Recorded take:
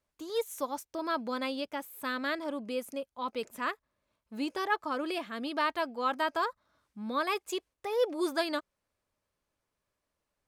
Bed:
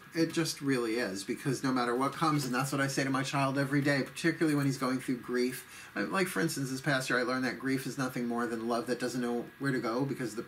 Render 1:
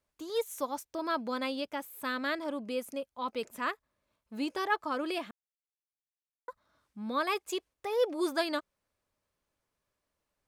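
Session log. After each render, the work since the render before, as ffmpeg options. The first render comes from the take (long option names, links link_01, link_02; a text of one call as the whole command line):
ffmpeg -i in.wav -filter_complex "[0:a]asplit=3[link_01][link_02][link_03];[link_01]atrim=end=5.31,asetpts=PTS-STARTPTS,afade=type=out:start_time=5.306:duration=0.004:curve=hsin[link_04];[link_02]atrim=start=5.31:end=6.48,asetpts=PTS-STARTPTS,volume=0[link_05];[link_03]atrim=start=6.48,asetpts=PTS-STARTPTS,afade=type=in:duration=0.004:curve=hsin[link_06];[link_04][link_05][link_06]concat=n=3:v=0:a=1" out.wav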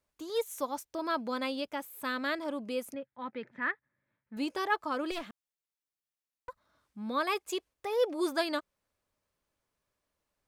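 ffmpeg -i in.wav -filter_complex "[0:a]asettb=1/sr,asplit=3[link_01][link_02][link_03];[link_01]atrim=end=2.944[link_04];[link_02]atrim=start=2.94:end=4.37,asetpts=PTS-STARTPTS,afade=type=in:duration=0.004:curve=qsin,afade=type=out:start_time=1.426:duration=0.004:curve=qsin,highpass=120,equalizer=frequency=130:width_type=q:width=4:gain=10,equalizer=frequency=440:width_type=q:width=4:gain=-6,equalizer=frequency=660:width_type=q:width=4:gain=-9,equalizer=frequency=1100:width_type=q:width=4:gain=-8,equalizer=frequency=1800:width_type=q:width=4:gain=9,equalizer=frequency=2800:width_type=q:width=4:gain=-10,lowpass=frequency=2900:width=0.5412,lowpass=frequency=2900:width=1.3066[link_05];[link_03]atrim=start=4.366[link_06];[link_04][link_05]acrossfade=duration=0.004:curve1=hsin:curve2=qsin[link_07];[link_07][link_06]acrossfade=duration=0.004:curve1=qsin:curve2=hsin,asettb=1/sr,asplit=3[link_08][link_09][link_10];[link_08]atrim=end=5.114[link_11];[link_09]atrim=start=5.11:end=6.49,asetpts=PTS-STARTPTS,afade=type=in:duration=0.004:curve=qsin,afade=type=out:start_time=1.376:duration=0.004:curve=qsin,aeval=exprs='clip(val(0),-1,0.00668)':channel_layout=same[link_12];[link_10]atrim=start=6.486[link_13];[link_11][link_12]acrossfade=duration=0.004:curve1=hsin:curve2=qsin[link_14];[link_14][link_13]acrossfade=duration=0.004:curve1=qsin:curve2=hsin" out.wav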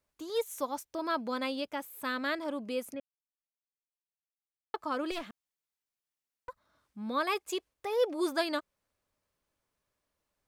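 ffmpeg -i in.wav -filter_complex "[0:a]asplit=3[link_01][link_02][link_03];[link_01]atrim=end=3,asetpts=PTS-STARTPTS,afade=type=out:start_time=2.996:duration=0.004:curve=hsin[link_04];[link_02]atrim=start=3:end=4.74,asetpts=PTS-STARTPTS,volume=0[link_05];[link_03]atrim=start=4.74,asetpts=PTS-STARTPTS,afade=type=in:duration=0.004:curve=hsin[link_06];[link_04][link_05][link_06]concat=n=3:v=0:a=1" out.wav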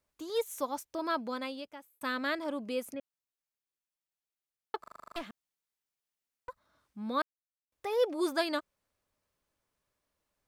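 ffmpeg -i in.wav -filter_complex "[0:a]asplit=13[link_01][link_02][link_03][link_04][link_05][link_06][link_07][link_08][link_09][link_10][link_11][link_12][link_13];[link_01]atrim=end=2.01,asetpts=PTS-STARTPTS,afade=type=out:start_time=1.11:duration=0.9[link_14];[link_02]atrim=start=2.01:end=4.842,asetpts=PTS-STARTPTS,afade=type=in:duration=0.004:curve=hsin[link_15];[link_03]atrim=start=4.798:end=4.842[link_16];[link_04]atrim=start=4.798:end=4.842[link_17];[link_05]atrim=start=4.798:end=4.842[link_18];[link_06]atrim=start=4.798:end=4.842[link_19];[link_07]atrim=start=4.798:end=4.842[link_20];[link_08]atrim=start=4.798:end=4.842[link_21];[link_09]atrim=start=4.798:end=4.842[link_22];[link_10]atrim=start=4.798:end=4.842[link_23];[link_11]atrim=start=5.158:end=7.22,asetpts=PTS-STARTPTS,afade=type=out:start_time=2.058:duration=0.004:curve=hsin[link_24];[link_12]atrim=start=7.22:end=7.72,asetpts=PTS-STARTPTS,volume=0[link_25];[link_13]atrim=start=7.72,asetpts=PTS-STARTPTS,afade=type=in:duration=0.004:curve=hsin[link_26];[link_14][link_15]concat=n=2:v=0:a=1[link_27];[link_27][link_16]acrossfade=duration=0.004:curve1=hsin:curve2=hsin[link_28];[link_28][link_17]acrossfade=duration=0.004:curve1=hsin:curve2=hsin[link_29];[link_29][link_18]acrossfade=duration=0.004:curve1=hsin:curve2=hsin[link_30];[link_30][link_19]acrossfade=duration=0.004:curve1=hsin:curve2=hsin[link_31];[link_31][link_20]acrossfade=duration=0.004:curve1=hsin:curve2=hsin[link_32];[link_32][link_21]acrossfade=duration=0.004:curve1=hsin:curve2=hsin[link_33];[link_33][link_22]acrossfade=duration=0.004:curve1=hsin:curve2=hsin[link_34];[link_34][link_23]acrossfade=duration=0.004:curve1=hsin:curve2=hsin[link_35];[link_24][link_25][link_26]concat=n=3:v=0:a=1[link_36];[link_35][link_36]acrossfade=duration=0.004:curve1=hsin:curve2=hsin" out.wav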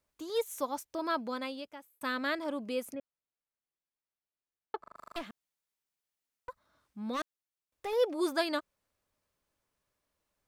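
ffmpeg -i in.wav -filter_complex "[0:a]asettb=1/sr,asplit=3[link_01][link_02][link_03];[link_01]atrim=end=2.954[link_04];[link_02]atrim=start=2.95:end=4.96,asetpts=PTS-STARTPTS,afade=type=in:duration=0.004:curve=qsin,afade=type=out:start_time=2.006:duration=0.004:curve=qsin,lowpass=frequency=1600:poles=1[link_05];[link_03]atrim=start=4.956[link_06];[link_04][link_05]acrossfade=duration=0.004:curve1=hsin:curve2=qsin[link_07];[link_07][link_06]acrossfade=duration=0.004:curve1=qsin:curve2=hsin,asettb=1/sr,asplit=3[link_08][link_09][link_10];[link_08]atrim=end=7.134[link_11];[link_09]atrim=start=7.13:end=7.93,asetpts=PTS-STARTPTS,afade=type=in:duration=0.004:curve=qsin,afade=type=out:start_time=0.796:duration=0.004:curve=qsin,asoftclip=type=hard:threshold=-31.5dB[link_12];[link_10]atrim=start=7.926[link_13];[link_11][link_12]acrossfade=duration=0.004:curve1=hsin:curve2=qsin[link_14];[link_14][link_13]acrossfade=duration=0.004:curve1=qsin:curve2=hsin" out.wav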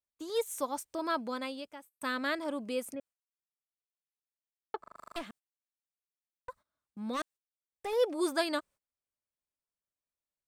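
ffmpeg -i in.wav -af "equalizer=frequency=8500:width=3.4:gain=7,agate=range=-19dB:threshold=-55dB:ratio=16:detection=peak" out.wav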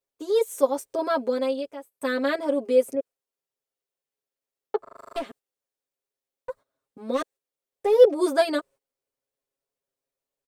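ffmpeg -i in.wav -af "equalizer=frequency=470:width=1.4:gain=14,aecho=1:1:7.4:0.99" out.wav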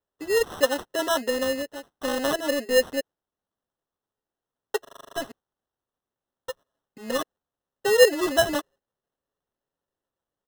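ffmpeg -i in.wav -filter_complex "[0:a]acrossover=split=300[link_01][link_02];[link_01]aeval=exprs='0.0211*(abs(mod(val(0)/0.0211+3,4)-2)-1)':channel_layout=same[link_03];[link_03][link_02]amix=inputs=2:normalize=0,acrusher=samples=19:mix=1:aa=0.000001" out.wav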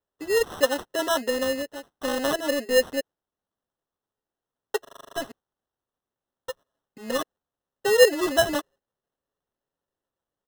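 ffmpeg -i in.wav -af anull out.wav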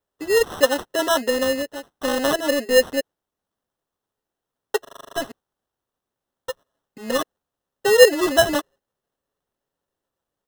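ffmpeg -i in.wav -af "volume=4.5dB" out.wav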